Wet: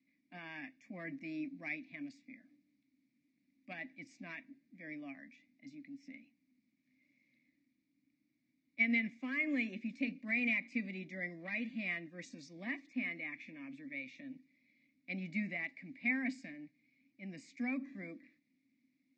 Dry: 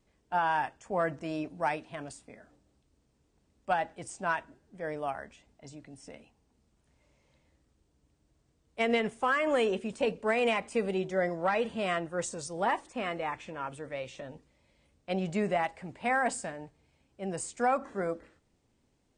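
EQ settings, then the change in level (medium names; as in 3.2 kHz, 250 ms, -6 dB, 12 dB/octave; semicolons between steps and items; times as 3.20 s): vowel filter i; high-pass 170 Hz 12 dB/octave; static phaser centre 2.1 kHz, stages 8; +11.0 dB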